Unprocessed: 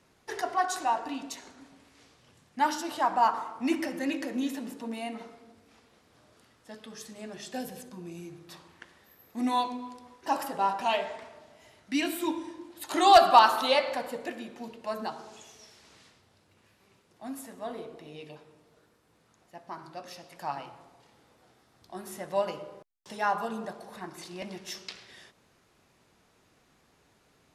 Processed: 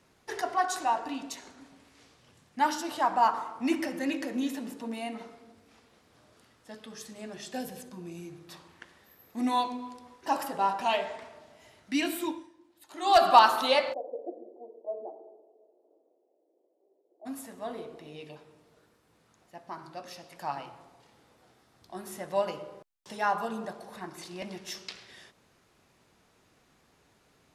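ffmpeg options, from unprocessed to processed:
-filter_complex "[0:a]asplit=3[a][b][c];[a]afade=t=out:st=13.92:d=0.02[d];[b]asuperpass=centerf=470:order=8:qfactor=1.2,afade=t=in:st=13.92:d=0.02,afade=t=out:st=17.25:d=0.02[e];[c]afade=t=in:st=17.25:d=0.02[f];[d][e][f]amix=inputs=3:normalize=0,asplit=3[g][h][i];[g]atrim=end=12.49,asetpts=PTS-STARTPTS,afade=t=out:st=12.18:d=0.31:silence=0.16788[j];[h]atrim=start=12.49:end=12.98,asetpts=PTS-STARTPTS,volume=-15.5dB[k];[i]atrim=start=12.98,asetpts=PTS-STARTPTS,afade=t=in:d=0.31:silence=0.16788[l];[j][k][l]concat=n=3:v=0:a=1"

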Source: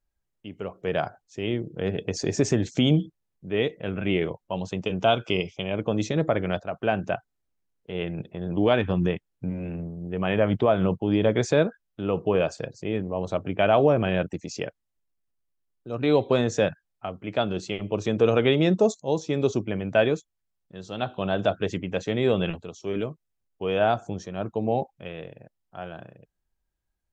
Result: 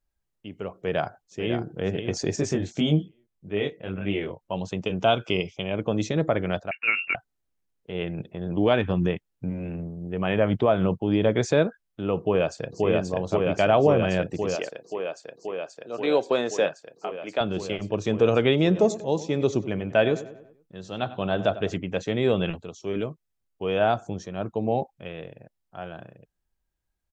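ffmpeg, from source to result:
-filter_complex "[0:a]asplit=2[a][b];[b]afade=t=in:st=0.76:d=0.01,afade=t=out:st=1.59:d=0.01,aecho=0:1:550|1100|1650:0.421697|0.0843393|0.0168679[c];[a][c]amix=inputs=2:normalize=0,asettb=1/sr,asplit=3[d][e][f];[d]atrim=end=2.364[g];[e]atrim=start=2.36:end=4.41,asetpts=PTS-STARTPTS,afade=t=in:d=0.004:c=qsin,afade=t=out:st=2.046:d=0.004:c=qsin,flanger=delay=19.5:depth=2.5:speed=1.7[h];[f]atrim=start=4.406[i];[g][h]acrossfade=d=0.004:c1=hsin:c2=qsin[j];[j][i]acrossfade=d=0.004:c1=qsin:c2=hsin,asettb=1/sr,asplit=3[k][l][m];[k]atrim=end=6.714[n];[l]atrim=start=6.71:end=7.15,asetpts=PTS-STARTPTS,afade=t=in:d=0.004:c=qsin,afade=t=out:st=0.436:d=0.004:c=qsin,lowpass=f=2.5k:t=q:w=0.5098,lowpass=f=2.5k:t=q:w=0.6013,lowpass=f=2.5k:t=q:w=0.9,lowpass=f=2.5k:t=q:w=2.563,afreqshift=-2900[o];[m]atrim=start=7.146[p];[n][o]acrossfade=d=0.004:c1=hsin:c2=qsin[q];[q][p]acrossfade=d=0.004:c1=qsin:c2=hsin,asplit=2[r][s];[s]afade=t=in:st=12.19:d=0.01,afade=t=out:st=12.86:d=0.01,aecho=0:1:530|1060|1590|2120|2650|3180|3710|4240|4770|5300|5830|6360:0.891251|0.757563|0.643929|0.547339|0.465239|0.395453|0.336135|0.285715|0.242857|0.206429|0.175464|0.149145[t];[r][t]amix=inputs=2:normalize=0,asettb=1/sr,asplit=3[u][v][w];[u]atrim=end=14.554[x];[v]atrim=start=14.55:end=17.41,asetpts=PTS-STARTPTS,afade=t=in:d=0.004:c=qsin,afade=t=out:st=2.856:d=0.004:c=qsin,highpass=340[y];[w]atrim=start=17.406[z];[x][y]acrossfade=d=0.004:c1=hsin:c2=qsin[aa];[aa][z]acrossfade=d=0.004:c1=qsin:c2=hsin,asplit=3[ab][ac][ad];[ab]afade=t=out:st=18.74:d=0.02[ae];[ac]asplit=2[af][ag];[ag]adelay=96,lowpass=f=3.1k:p=1,volume=-15dB,asplit=2[ah][ai];[ai]adelay=96,lowpass=f=3.1k:p=1,volume=0.5,asplit=2[aj][ak];[ak]adelay=96,lowpass=f=3.1k:p=1,volume=0.5,asplit=2[al][am];[am]adelay=96,lowpass=f=3.1k:p=1,volume=0.5,asplit=2[an][ao];[ao]adelay=96,lowpass=f=3.1k:p=1,volume=0.5[ap];[af][ah][aj][al][an][ap]amix=inputs=6:normalize=0,afade=t=in:st=18.74:d=0.02,afade=t=out:st=21.76:d=0.02[aq];[ad]afade=t=in:st=21.76:d=0.02[ar];[ae][aq][ar]amix=inputs=3:normalize=0"

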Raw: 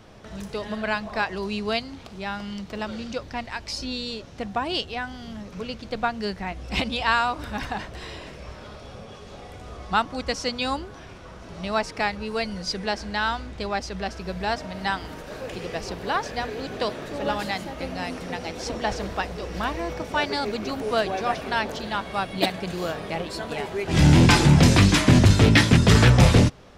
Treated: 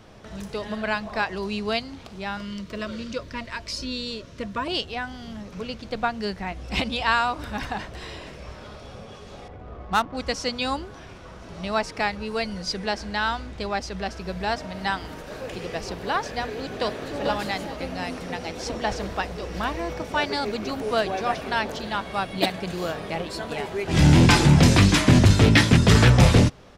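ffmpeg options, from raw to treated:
-filter_complex "[0:a]asettb=1/sr,asplit=3[a][b][c];[a]atrim=end=2.374[d];[b]atrim=start=2.37:end=4.68,asetpts=PTS-STARTPTS,afade=t=in:d=0.004:c=qsin,afade=t=out:st=2.306:d=0.004:c=qsin,asuperstop=centerf=790:order=20:qfactor=3.9[e];[c]atrim=start=4.676[f];[d][e]acrossfade=d=0.004:c1=hsin:c2=qsin[g];[g][f]acrossfade=d=0.004:c1=qsin:c2=hsin,asettb=1/sr,asplit=3[h][i][j];[h]atrim=end=9.484[k];[i]atrim=start=9.48:end=10.17,asetpts=PTS-STARTPTS,afade=t=in:d=0.004:c=qsin,afade=t=out:st=0.686:d=0.004:c=qsin,adynamicsmooth=sensitivity=4.5:basefreq=1.3k[l];[j]atrim=start=10.166[m];[k][l]acrossfade=d=0.004:c1=hsin:c2=qsin[n];[n][m]acrossfade=d=0.004:c1=qsin:c2=hsin,asplit=2[o][p];[p]afade=t=in:st=16.4:d=0.01,afade=t=out:st=17.22:d=0.01,aecho=0:1:440|880|1320|1760:0.473151|0.165603|0.057961|0.0202864[q];[o][q]amix=inputs=2:normalize=0"

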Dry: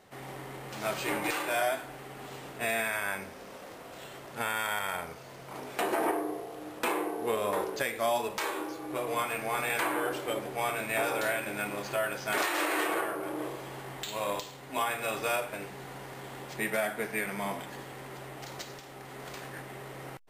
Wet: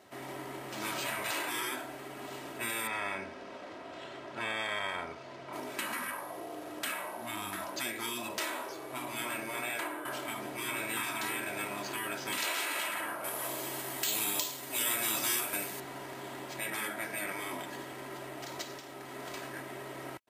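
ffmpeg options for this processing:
-filter_complex "[0:a]asettb=1/sr,asplit=3[a][b][c];[a]atrim=end=2.874[d];[b]atrim=start=2.87:end=5.53,asetpts=PTS-STARTPTS,afade=t=in:d=0.004:c=qsin,afade=t=out:st=2.656:d=0.004:c=qsin,lowpass=4.5k[e];[c]atrim=start=5.526[f];[d][e]acrossfade=d=0.004:c1=hsin:c2=qsin[g];[g][f]acrossfade=d=0.004:c1=qsin:c2=hsin,asettb=1/sr,asplit=3[h][i][j];[h]atrim=end=13.244[k];[i]atrim=start=13.24:end=15.8,asetpts=PTS-STARTPTS,afade=t=in:d=0.004:c=qsin,afade=t=out:st=2.556:d=0.004:c=qsin,aemphasis=mode=production:type=75kf[l];[j]atrim=start=15.796[m];[k][l]acrossfade=d=0.004:c1=hsin:c2=qsin[n];[n][m]acrossfade=d=0.004:c1=qsin:c2=hsin,asplit=2[o][p];[o]atrim=end=10.05,asetpts=PTS-STARTPTS,afade=t=out:st=9.21:d=0.84:silence=0.251189[q];[p]atrim=start=10.05,asetpts=PTS-STARTPTS,afade=t=in:d=0.004:c=hsin:silence=0.251189[r];[q][r]concat=n=2:v=0:a=1,afftfilt=real='re*lt(hypot(re,im),0.0708)':imag='im*lt(hypot(re,im),0.0708)':win_size=1024:overlap=0.75,highpass=95,aecho=1:1:3.1:0.5"

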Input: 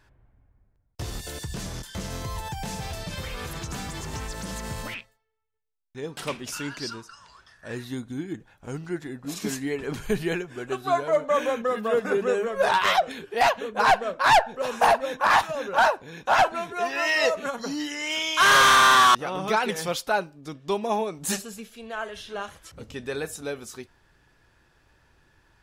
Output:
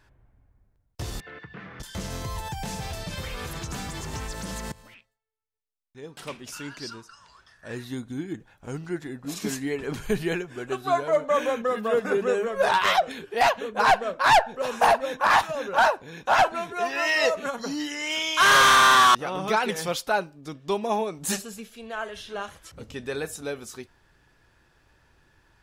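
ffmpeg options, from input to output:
-filter_complex "[0:a]asettb=1/sr,asplit=3[a][b][c];[a]atrim=end=1.204[d];[b]atrim=start=1.2:end=1.8,asetpts=PTS-STARTPTS,afade=t=in:d=0.004:c=qsin,afade=t=out:st=0.596:d=0.004:c=qsin,highpass=230,equalizer=f=250:t=q:w=4:g=-7,equalizer=f=370:t=q:w=4:g=-7,equalizer=f=610:t=q:w=4:g=-10,equalizer=f=920:t=q:w=4:g=-7,equalizer=f=1.3k:t=q:w=4:g=4,equalizer=f=2k:t=q:w=4:g=4,lowpass=f=2.3k:w=0.5412,lowpass=f=2.3k:w=1.3066[e];[c]atrim=start=1.796[f];[d][e]acrossfade=d=0.004:c1=hsin:c2=qsin[g];[g][f]acrossfade=d=0.004:c1=qsin:c2=hsin,asplit=2[h][i];[h]atrim=end=4.72,asetpts=PTS-STARTPTS,afade=t=out:st=4.716:d=0.004:c=hsin:silence=0.112202[j];[i]atrim=start=4.72,asetpts=PTS-STARTPTS,afade=t=in:d=3.45:silence=0.112202[k];[j][k]concat=n=2:v=0:a=1"

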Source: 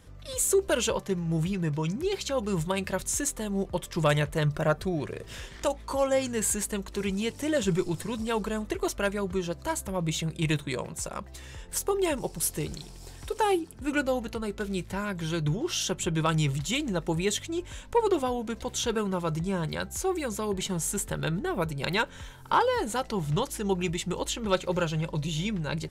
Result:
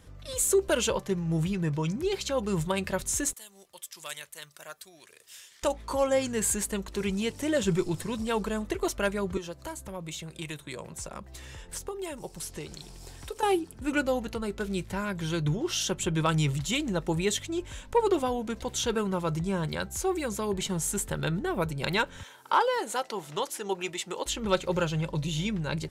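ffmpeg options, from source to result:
-filter_complex "[0:a]asettb=1/sr,asplit=3[a][b][c];[a]atrim=end=3.334[d];[b]atrim=start=3.33:end=5.63,asetpts=PTS-STARTPTS,afade=t=in:d=0.004:c=qsin,afade=t=out:st=2.296:d=0.004:c=qsin,aderivative[e];[c]atrim=start=5.626[f];[d][e]acrossfade=d=0.004:c1=hsin:c2=qsin[g];[g][f]acrossfade=d=0.004:c1=qsin:c2=hsin,asettb=1/sr,asplit=3[h][i][j];[h]atrim=end=9.374[k];[i]atrim=start=9.37:end=13.43,asetpts=PTS-STARTPTS,afade=t=in:d=0.004:c=qsin,afade=t=out:st=4.056:d=0.004:c=qsin,acrossover=split=420|7800[l][m][n];[l]acompressor=threshold=-42dB:ratio=4[o];[m]acompressor=threshold=-39dB:ratio=4[p];[n]acompressor=threshold=-47dB:ratio=4[q];[o][p][q]amix=inputs=3:normalize=0[r];[j]atrim=start=13.426[s];[k][r]acrossfade=d=0.004:c1=hsin:c2=qsin[t];[t][s]acrossfade=d=0.004:c1=qsin:c2=hsin,asettb=1/sr,asplit=3[u][v][w];[u]atrim=end=22.234[x];[v]atrim=start=22.23:end=24.26,asetpts=PTS-STARTPTS,afade=t=in:d=0.004:c=qsin,afade=t=out:st=2.026:d=0.004:c=qsin,highpass=400[y];[w]atrim=start=24.256[z];[x][y]acrossfade=d=0.004:c1=hsin:c2=qsin[aa];[aa][z]acrossfade=d=0.004:c1=qsin:c2=hsin"

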